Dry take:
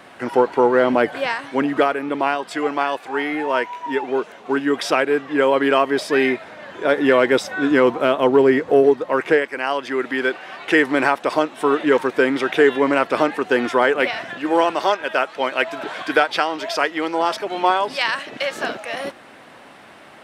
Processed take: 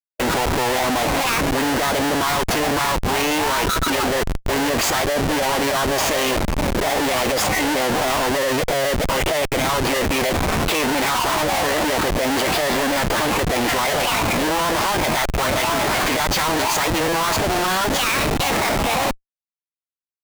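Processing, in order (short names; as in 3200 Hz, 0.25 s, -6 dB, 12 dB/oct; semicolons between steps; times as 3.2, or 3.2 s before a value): painted sound fall, 10.88–11.76, 460–940 Hz -32 dBFS; Schmitt trigger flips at -32 dBFS; formant shift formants +5 st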